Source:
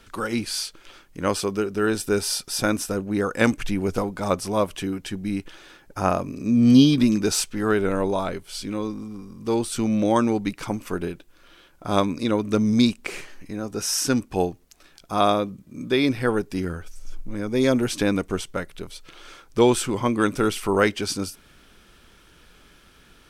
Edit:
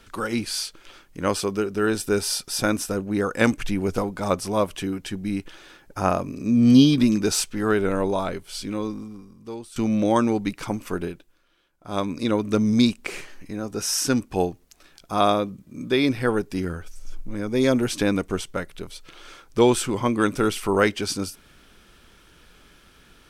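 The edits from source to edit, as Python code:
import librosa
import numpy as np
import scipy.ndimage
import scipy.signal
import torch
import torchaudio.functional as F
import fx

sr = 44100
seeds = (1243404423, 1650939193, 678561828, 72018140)

y = fx.edit(x, sr, fx.fade_out_to(start_s=8.96, length_s=0.8, curve='qua', floor_db=-14.5),
    fx.fade_down_up(start_s=11.0, length_s=1.24, db=-14.5, fade_s=0.45), tone=tone)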